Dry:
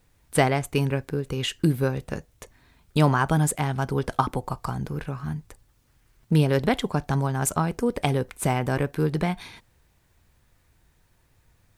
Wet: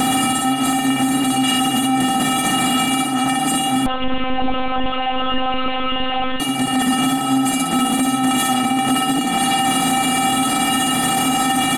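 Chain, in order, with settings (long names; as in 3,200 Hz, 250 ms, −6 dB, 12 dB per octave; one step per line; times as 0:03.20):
compressor on every frequency bin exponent 0.2
mains-hum notches 50/100/150/200/250 Hz
compressor whose output falls as the input rises −20 dBFS, ratio −0.5
tuned comb filter 260 Hz, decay 0.18 s, harmonics odd, mix 100%
repeating echo 60 ms, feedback 44%, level −5.5 dB
0:03.86–0:06.40: linear-prediction vocoder at 8 kHz pitch kept
boost into a limiter +29.5 dB
level −8 dB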